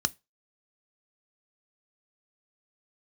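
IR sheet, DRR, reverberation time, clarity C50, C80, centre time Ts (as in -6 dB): 13.0 dB, 0.25 s, 29.5 dB, 36.5 dB, 2 ms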